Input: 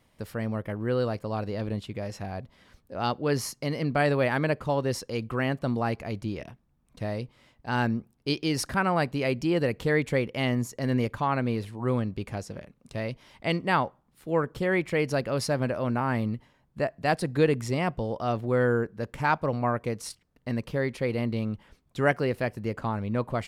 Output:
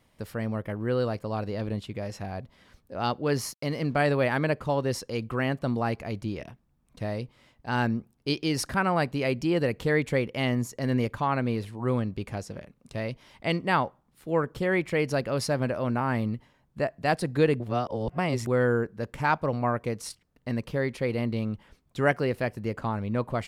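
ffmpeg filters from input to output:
-filter_complex "[0:a]asettb=1/sr,asplit=3[s0][s1][s2];[s0]atrim=end=3.264[s3];[s1]atrim=start=3.26:end=4.08,asetpts=PTS-STARTPTS,afade=t=in:d=0.004:c=qsin,afade=t=out:st=0.816:d=0.004:c=qsin,aeval=exprs='sgn(val(0))*max(abs(val(0))-0.00158,0)':c=same[s4];[s2]atrim=start=4.076[s5];[s3][s4]acrossfade=d=0.004:c1=hsin:c2=qsin[s6];[s6][s5]acrossfade=d=0.004:c1=qsin:c2=hsin,asplit=3[s7][s8][s9];[s7]atrim=end=17.602[s10];[s8]atrim=start=17.598:end=18.472,asetpts=PTS-STARTPTS,areverse[s11];[s9]atrim=start=18.468[s12];[s10][s11]acrossfade=d=0.004:c1=hsin:c2=hsin[s13];[s13][s12]acrossfade=d=0.004:c1=hsin:c2=hsin"

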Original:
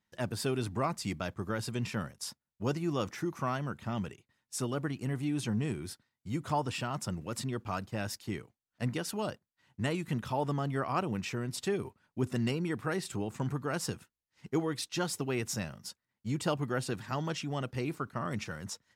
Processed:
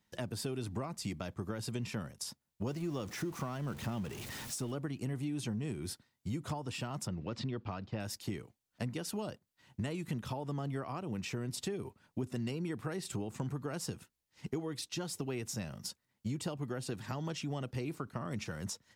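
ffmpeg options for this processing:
-filter_complex "[0:a]asettb=1/sr,asplit=3[s0][s1][s2];[s0]atrim=end=2.674[s3];[s1]atrim=start=2.67:end=4.72,asetpts=PTS-STARTPTS,afade=t=in:d=0.004:c=qsin,afade=t=out:st=2.046:d=0.004:c=qsin,aeval=exprs='val(0)+0.5*0.0075*sgn(val(0))':c=same[s4];[s2]atrim=start=4.716[s5];[s3][s4]acrossfade=d=0.004:c1=hsin:c2=qsin[s6];[s6][s5]acrossfade=d=0.004:c1=qsin:c2=hsin,asettb=1/sr,asplit=3[s7][s8][s9];[s7]atrim=end=7.074[s10];[s8]atrim=start=7.07:end=8,asetpts=PTS-STARTPTS,afade=t=in:d=0.004:c=qsin,afade=t=out:st=0.926:d=0.004:c=qsin,lowpass=f=4700:w=0.5412,lowpass=f=4700:w=1.3066[s11];[s9]atrim=start=7.996[s12];[s10][s11]acrossfade=d=0.004:c1=hsin:c2=qsin[s13];[s13][s12]acrossfade=d=0.004:c1=qsin:c2=hsin,acompressor=threshold=0.00891:ratio=6,equalizer=f=1500:w=0.95:g=-4,acrossover=split=350[s14][s15];[s15]acompressor=threshold=0.00631:ratio=6[s16];[s14][s16]amix=inputs=2:normalize=0,volume=2.11"

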